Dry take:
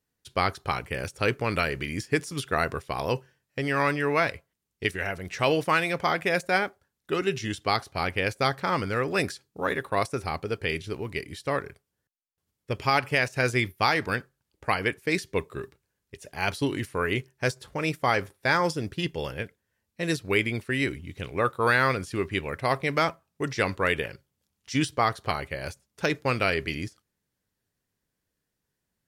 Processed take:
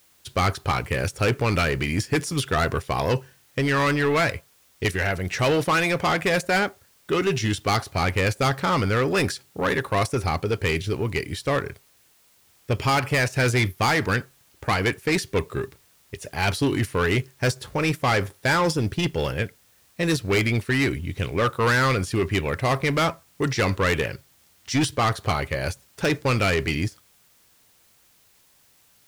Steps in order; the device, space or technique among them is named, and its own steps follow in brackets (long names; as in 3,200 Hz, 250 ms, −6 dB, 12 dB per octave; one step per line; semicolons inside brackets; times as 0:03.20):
open-reel tape (soft clipping −24.5 dBFS, distortion −8 dB; parametric band 100 Hz +4 dB 0.92 octaves; white noise bed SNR 35 dB)
level +8 dB